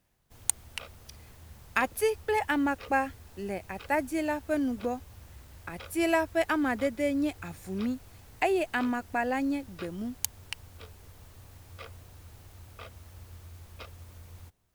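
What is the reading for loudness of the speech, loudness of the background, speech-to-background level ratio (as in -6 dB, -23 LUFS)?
-30.5 LUFS, -50.0 LUFS, 19.5 dB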